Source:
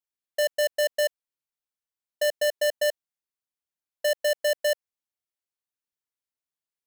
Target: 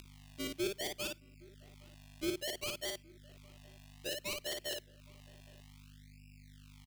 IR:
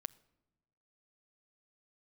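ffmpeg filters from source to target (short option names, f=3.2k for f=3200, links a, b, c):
-filter_complex "[0:a]asoftclip=type=hard:threshold=-37.5dB,agate=range=-28dB:threshold=-38dB:ratio=16:detection=peak,aeval=exprs='val(0)+0.000355*(sin(2*PI*50*n/s)+sin(2*PI*2*50*n/s)/2+sin(2*PI*3*50*n/s)/3+sin(2*PI*4*50*n/s)/4+sin(2*PI*5*50*n/s)/5)':c=same,acrusher=samples=34:mix=1:aa=0.000001:lfo=1:lforange=34:lforate=0.6,equalizer=f=360:t=o:w=0.49:g=12.5,asplit=2[a][b];[b]adelay=816.3,volume=-25dB,highshelf=f=4k:g=-18.4[c];[a][c]amix=inputs=2:normalize=0,asplit=2[d][e];[1:a]atrim=start_sample=2205,atrim=end_sample=3528,adelay=53[f];[e][f]afir=irnorm=-1:irlink=0,volume=-0.5dB[g];[d][g]amix=inputs=2:normalize=0,acompressor=mode=upward:threshold=-59dB:ratio=2.5,highshelf=f=1.9k:t=q:w=1.5:g=10,volume=9dB"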